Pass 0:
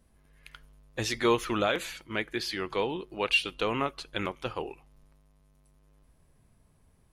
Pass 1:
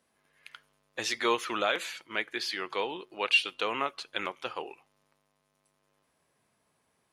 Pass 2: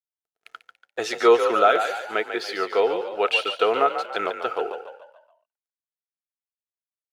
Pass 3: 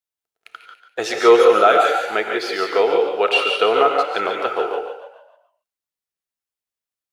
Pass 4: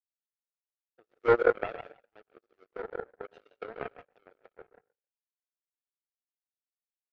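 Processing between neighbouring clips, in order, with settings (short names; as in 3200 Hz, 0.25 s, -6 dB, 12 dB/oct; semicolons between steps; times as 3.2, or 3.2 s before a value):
weighting filter A
crossover distortion -58 dBFS; small resonant body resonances 450/680/1300 Hz, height 17 dB, ringing for 30 ms; on a send: frequency-shifting echo 0.143 s, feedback 44%, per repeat +43 Hz, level -8.5 dB
non-linear reverb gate 0.2 s rising, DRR 3.5 dB; gain +3.5 dB
bin magnitudes rounded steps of 15 dB; band-pass 480 Hz, Q 1.3; power-law curve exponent 3; gain -4 dB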